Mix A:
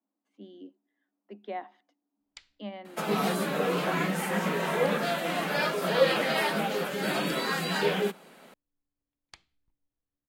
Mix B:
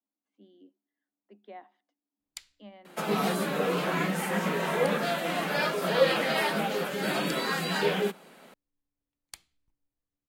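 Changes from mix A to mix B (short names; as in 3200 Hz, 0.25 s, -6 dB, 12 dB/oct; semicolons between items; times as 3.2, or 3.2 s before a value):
speech -9.5 dB; first sound: remove air absorption 130 m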